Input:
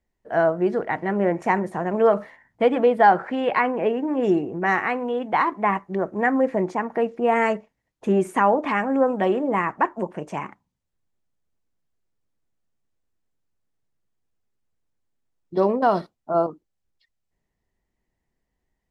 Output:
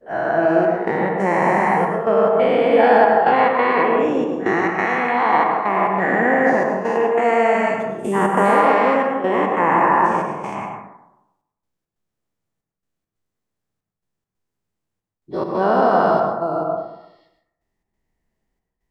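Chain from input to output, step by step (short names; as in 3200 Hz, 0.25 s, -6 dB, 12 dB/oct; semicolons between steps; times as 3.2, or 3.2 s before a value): spectral dilation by 0.48 s; step gate "xxxxxx..xx." 138 bpm -12 dB; on a send: reverb RT60 0.90 s, pre-delay 93 ms, DRR 2.5 dB; on the sum: gain -5 dB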